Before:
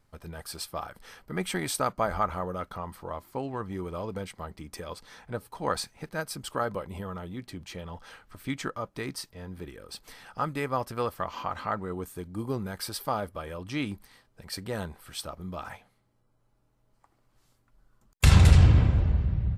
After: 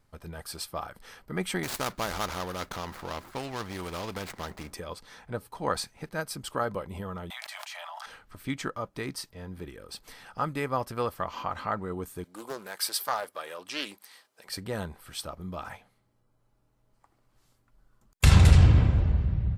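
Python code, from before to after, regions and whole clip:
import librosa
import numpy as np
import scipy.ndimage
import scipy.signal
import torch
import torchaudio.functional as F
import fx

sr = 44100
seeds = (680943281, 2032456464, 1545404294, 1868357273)

y = fx.chain(x, sr, fx.median_filter(points=15),
    fx.spectral_comp(ratio=2.0), at=(1.63, 4.73))
y = fx.chain(y, sr, fx.steep_highpass(hz=630.0, slope=96),
    fx.env_flatten(amount_pct=100), at=(7.3, 8.06))
y = fx.chain(y, sr, fx.highpass(hz=470.0, slope=12),
    fx.high_shelf(hz=2600.0, db=7.5),
    fx.doppler_dist(depth_ms=0.3), at=(12.24, 14.49))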